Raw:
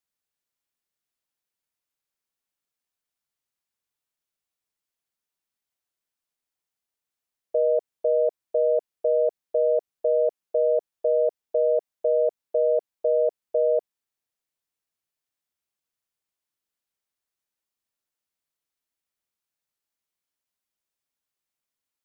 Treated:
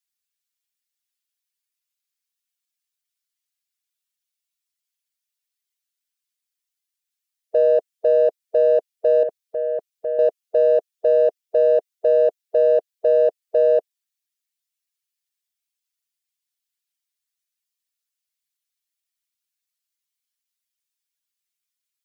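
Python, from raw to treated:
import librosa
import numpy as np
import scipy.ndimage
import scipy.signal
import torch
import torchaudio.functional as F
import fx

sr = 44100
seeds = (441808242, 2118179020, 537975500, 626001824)

p1 = fx.bin_expand(x, sr, power=1.5)
p2 = fx.peak_eq(p1, sr, hz=540.0, db=-9.5, octaves=1.1, at=(9.23, 10.19))
p3 = 10.0 ** (-29.5 / 20.0) * np.tanh(p2 / 10.0 ** (-29.5 / 20.0))
p4 = p2 + (p3 * 10.0 ** (-11.0 / 20.0))
y = p4 * 10.0 ** (5.0 / 20.0)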